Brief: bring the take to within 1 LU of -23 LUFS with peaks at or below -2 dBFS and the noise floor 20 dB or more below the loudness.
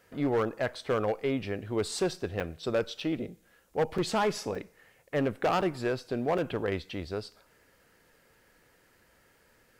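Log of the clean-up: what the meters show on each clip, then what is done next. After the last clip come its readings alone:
clipped samples 1.5%; clipping level -21.5 dBFS; dropouts 6; longest dropout 4.3 ms; loudness -31.5 LUFS; peak level -21.5 dBFS; loudness target -23.0 LUFS
-> clip repair -21.5 dBFS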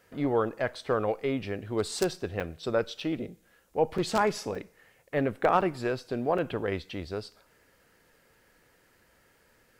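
clipped samples 0.0%; dropouts 6; longest dropout 4.3 ms
-> interpolate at 2.40/3.00/3.98/4.55/5.61/6.38 s, 4.3 ms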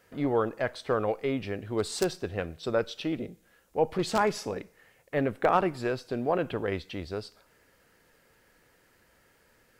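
dropouts 0; loudness -30.5 LUFS; peak level -12.5 dBFS; loudness target -23.0 LUFS
-> trim +7.5 dB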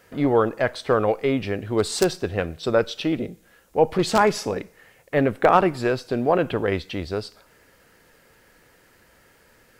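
loudness -23.0 LUFS; peak level -5.0 dBFS; noise floor -57 dBFS

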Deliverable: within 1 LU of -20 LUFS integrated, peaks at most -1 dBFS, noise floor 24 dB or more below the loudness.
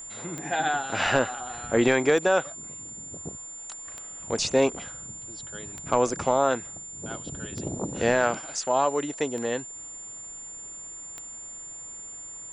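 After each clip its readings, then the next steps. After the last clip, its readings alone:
clicks found 7; steady tone 7.2 kHz; tone level -38 dBFS; loudness -28.0 LUFS; peak level -9.0 dBFS; loudness target -20.0 LUFS
-> de-click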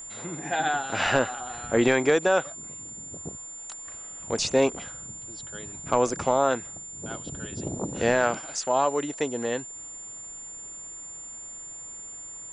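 clicks found 0; steady tone 7.2 kHz; tone level -38 dBFS
-> band-stop 7.2 kHz, Q 30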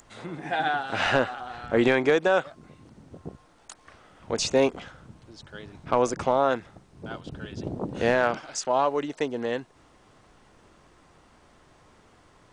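steady tone not found; loudness -26.0 LUFS; peak level -9.5 dBFS; loudness target -20.0 LUFS
-> trim +6 dB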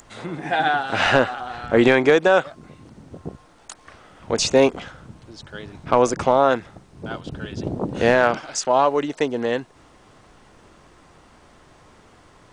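loudness -19.5 LUFS; peak level -3.5 dBFS; noise floor -52 dBFS

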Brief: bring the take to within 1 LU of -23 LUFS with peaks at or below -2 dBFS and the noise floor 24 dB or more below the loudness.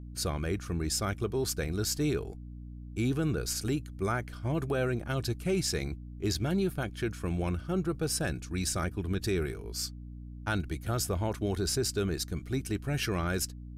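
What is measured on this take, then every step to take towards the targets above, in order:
hum 60 Hz; highest harmonic 300 Hz; hum level -40 dBFS; loudness -32.0 LUFS; peak level -17.5 dBFS; loudness target -23.0 LUFS
-> de-hum 60 Hz, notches 5; trim +9 dB

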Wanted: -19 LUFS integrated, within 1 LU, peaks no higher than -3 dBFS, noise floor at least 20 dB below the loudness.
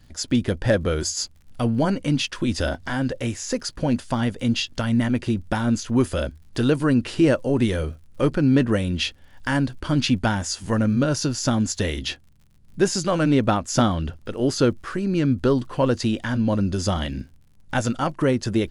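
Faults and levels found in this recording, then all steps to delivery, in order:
tick rate 56 per s; loudness -23.0 LUFS; peak level -5.5 dBFS; loudness target -19.0 LUFS
-> de-click; trim +4 dB; peak limiter -3 dBFS

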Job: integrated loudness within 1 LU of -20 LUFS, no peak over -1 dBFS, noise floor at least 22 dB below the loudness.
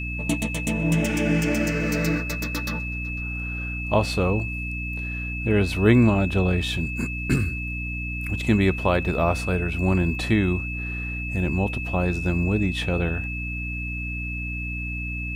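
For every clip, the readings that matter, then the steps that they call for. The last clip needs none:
hum 60 Hz; highest harmonic 300 Hz; hum level -29 dBFS; steady tone 2.6 kHz; tone level -31 dBFS; loudness -24.5 LUFS; peak level -5.5 dBFS; loudness target -20.0 LUFS
-> de-hum 60 Hz, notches 5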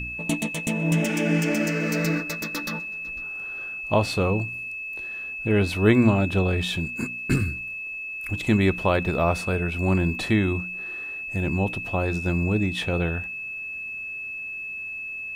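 hum not found; steady tone 2.6 kHz; tone level -31 dBFS
-> band-stop 2.6 kHz, Q 30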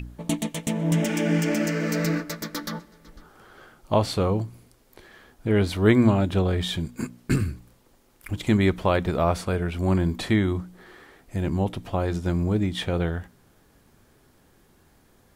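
steady tone not found; loudness -25.0 LUFS; peak level -6.5 dBFS; loudness target -20.0 LUFS
-> trim +5 dB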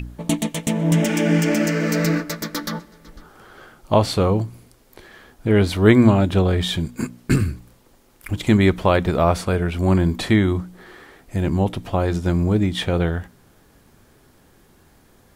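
loudness -20.0 LUFS; peak level -1.5 dBFS; noise floor -55 dBFS

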